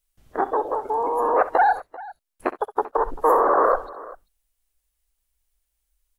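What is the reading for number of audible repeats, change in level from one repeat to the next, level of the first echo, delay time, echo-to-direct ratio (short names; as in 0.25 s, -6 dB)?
2, no steady repeat, -15.5 dB, 65 ms, -14.0 dB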